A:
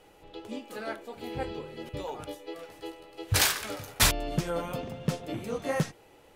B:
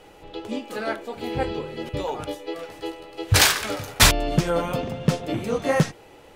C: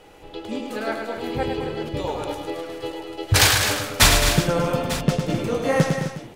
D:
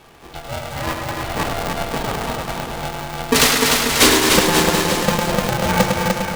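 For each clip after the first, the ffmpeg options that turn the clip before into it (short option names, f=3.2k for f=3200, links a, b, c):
-af "equalizer=f=13k:t=o:w=1:g=-5,volume=8.5dB"
-af "aecho=1:1:104|212|258|362|898:0.531|0.355|0.282|0.15|0.188"
-af "aecho=1:1:300|540|732|885.6|1008:0.631|0.398|0.251|0.158|0.1,aeval=exprs='val(0)*sgn(sin(2*PI*350*n/s))':c=same,volume=1.5dB"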